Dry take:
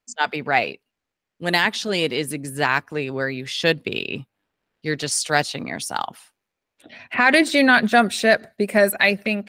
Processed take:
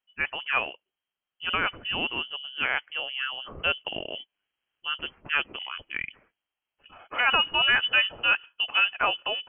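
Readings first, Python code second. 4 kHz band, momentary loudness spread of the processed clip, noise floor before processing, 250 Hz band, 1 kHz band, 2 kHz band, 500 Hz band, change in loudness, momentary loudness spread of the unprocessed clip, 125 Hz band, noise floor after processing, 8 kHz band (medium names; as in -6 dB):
+0.5 dB, 14 LU, -83 dBFS, -21.5 dB, -8.0 dB, -5.5 dB, -16.5 dB, -5.5 dB, 13 LU, -17.0 dB, under -85 dBFS, under -40 dB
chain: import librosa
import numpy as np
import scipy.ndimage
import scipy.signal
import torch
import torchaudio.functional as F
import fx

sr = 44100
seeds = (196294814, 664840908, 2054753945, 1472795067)

y = fx.freq_invert(x, sr, carrier_hz=3200)
y = y * librosa.db_to_amplitude(-7.0)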